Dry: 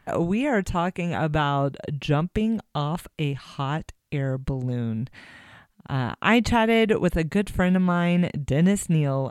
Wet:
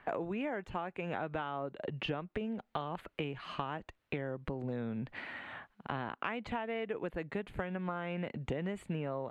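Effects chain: three-band isolator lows -12 dB, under 270 Hz, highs -22 dB, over 3.2 kHz; compression 12:1, threshold -37 dBFS, peak gain reduction 22.5 dB; trim +3.5 dB

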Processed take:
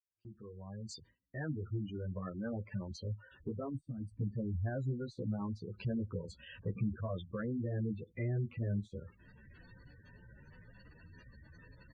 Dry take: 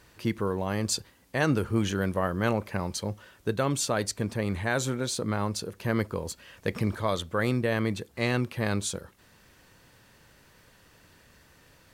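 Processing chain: fade-in on the opening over 3.92 s; spectral gate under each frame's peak -10 dB strong; compression 1.5:1, threshold -53 dBFS, peak gain reduction 10.5 dB; gate with hold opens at -58 dBFS; peaking EQ 620 Hz -8 dB 3 oct; low-pass that closes with the level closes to 870 Hz, closed at -38.5 dBFS; time-frequency box 3.73–4.21 s, 310–7800 Hz -23 dB; endless flanger 10.2 ms +2 Hz; trim +9.5 dB

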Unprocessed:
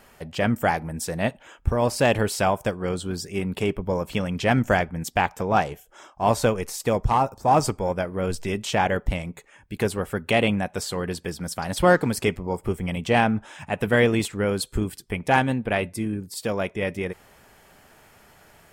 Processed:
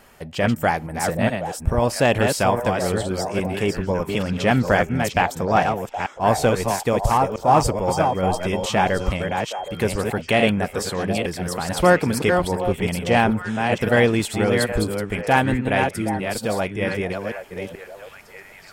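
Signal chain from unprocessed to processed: chunks repeated in reverse 433 ms, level -5 dB; 7.90–9.80 s: whistle 3.2 kHz -46 dBFS; repeats whose band climbs or falls 769 ms, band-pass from 660 Hz, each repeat 1.4 oct, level -8.5 dB; trim +2 dB

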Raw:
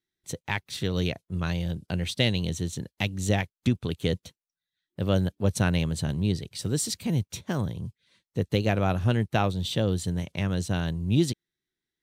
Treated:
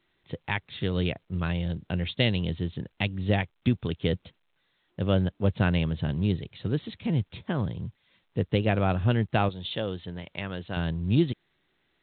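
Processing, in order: 9.49–10.77 s: bass shelf 290 Hz -12 dB; A-law 64 kbps 8 kHz

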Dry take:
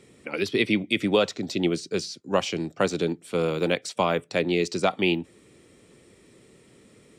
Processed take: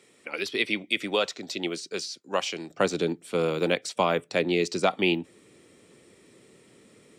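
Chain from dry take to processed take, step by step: high-pass 720 Hz 6 dB/octave, from 2.70 s 160 Hz

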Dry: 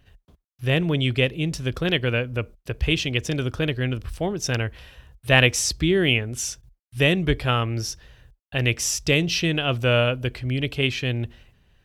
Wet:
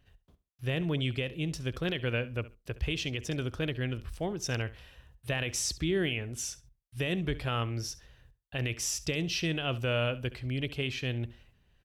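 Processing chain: peak limiter -13 dBFS, peak gain reduction 11.5 dB; on a send: feedback delay 68 ms, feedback 18%, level -17.5 dB; on the sum: trim -8 dB

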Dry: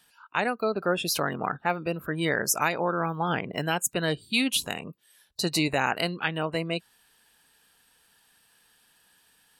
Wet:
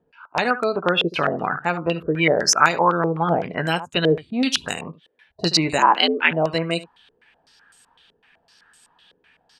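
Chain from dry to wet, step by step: 5.78–6.31 s: frequency shift +84 Hz; early reflections 12 ms -10 dB, 75 ms -15.5 dB; step-sequenced low-pass 7.9 Hz 450–7800 Hz; trim +4 dB

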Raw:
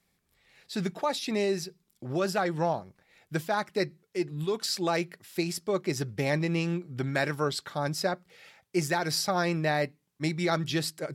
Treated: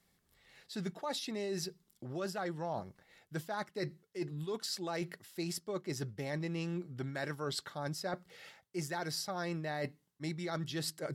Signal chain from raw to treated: band-stop 2.4 kHz, Q 9; reverse; compression 5:1, threshold -36 dBFS, peak gain reduction 13 dB; reverse

